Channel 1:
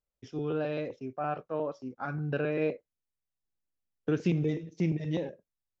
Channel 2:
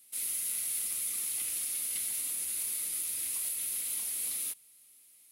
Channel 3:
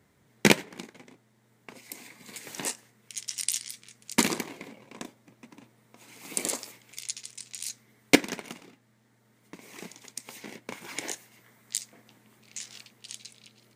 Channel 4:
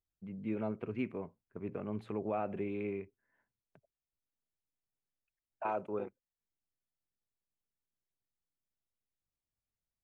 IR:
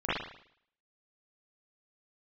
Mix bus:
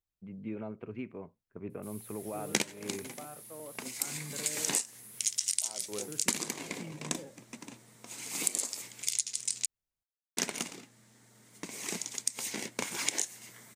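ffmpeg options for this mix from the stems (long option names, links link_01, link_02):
-filter_complex "[0:a]alimiter=level_in=2dB:limit=-24dB:level=0:latency=1,volume=-2dB,adelay=2000,volume=-11dB[link_01];[1:a]highshelf=frequency=11000:gain=7,asoftclip=type=tanh:threshold=-26dB,adelay=1700,volume=-18.5dB[link_02];[2:a]equalizer=frequency=7700:width_type=o:width=1.6:gain=11,adelay=2100,volume=3dB,asplit=3[link_03][link_04][link_05];[link_03]atrim=end=9.66,asetpts=PTS-STARTPTS,afade=type=out:start_time=9.656:duration=0.004:curve=hsin[link_06];[link_04]atrim=start=9.66:end=10.37,asetpts=PTS-STARTPTS,volume=0[link_07];[link_05]atrim=start=10.37,asetpts=PTS-STARTPTS,afade=type=in:duration=0.004:curve=hsin[link_08];[link_06][link_07][link_08]concat=n=3:v=0:a=1[link_09];[3:a]alimiter=level_in=4.5dB:limit=-24dB:level=0:latency=1:release=440,volume=-4.5dB,volume=-0.5dB[link_10];[link_01][link_02][link_09][link_10]amix=inputs=4:normalize=0,acompressor=threshold=-26dB:ratio=20"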